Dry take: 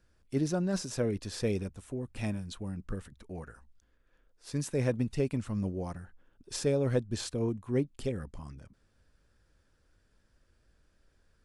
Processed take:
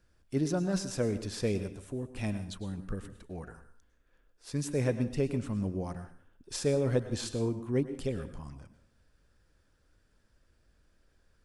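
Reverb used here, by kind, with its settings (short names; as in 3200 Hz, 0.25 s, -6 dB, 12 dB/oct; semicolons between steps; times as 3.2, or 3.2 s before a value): plate-style reverb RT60 0.5 s, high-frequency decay 0.95×, pre-delay 90 ms, DRR 11 dB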